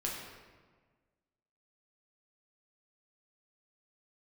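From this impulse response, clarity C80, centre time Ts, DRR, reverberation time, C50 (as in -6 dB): 3.5 dB, 71 ms, -3.5 dB, 1.5 s, 1.5 dB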